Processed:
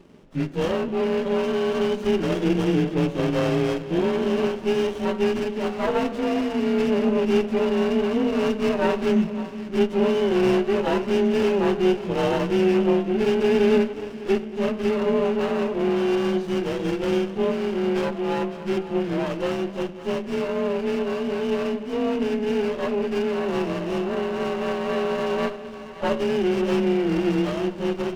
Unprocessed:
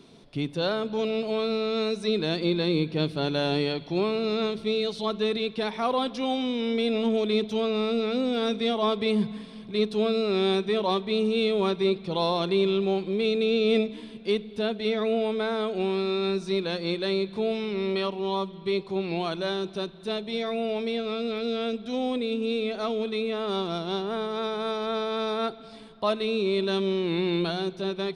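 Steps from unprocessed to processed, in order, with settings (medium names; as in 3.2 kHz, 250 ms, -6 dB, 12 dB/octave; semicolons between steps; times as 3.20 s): frequency axis rescaled in octaves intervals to 90%; de-hum 62.88 Hz, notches 32; on a send: two-band feedback delay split 530 Hz, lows 231 ms, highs 554 ms, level -14 dB; on the sum: sliding maximum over 17 samples; trim +5.5 dB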